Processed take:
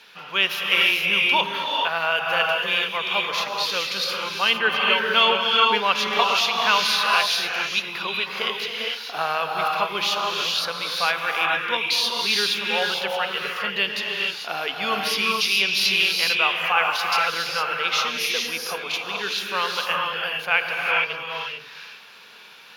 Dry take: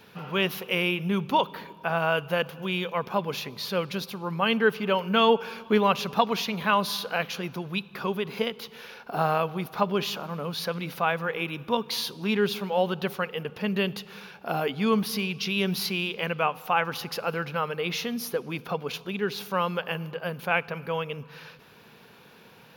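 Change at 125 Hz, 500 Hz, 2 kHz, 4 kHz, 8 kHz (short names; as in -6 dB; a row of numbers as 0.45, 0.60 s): -11.0, -2.0, +9.5, +11.5, +9.0 dB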